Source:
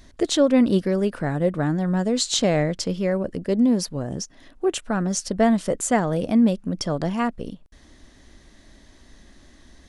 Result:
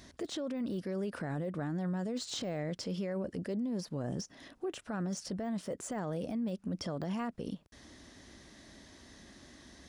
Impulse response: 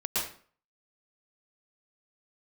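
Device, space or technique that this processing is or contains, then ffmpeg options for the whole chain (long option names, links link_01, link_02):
broadcast voice chain: -af "highpass=84,deesser=0.95,acompressor=threshold=-27dB:ratio=4,equalizer=frequency=5300:width_type=o:width=0.3:gain=3.5,alimiter=level_in=4dB:limit=-24dB:level=0:latency=1:release=10,volume=-4dB,volume=-1.5dB"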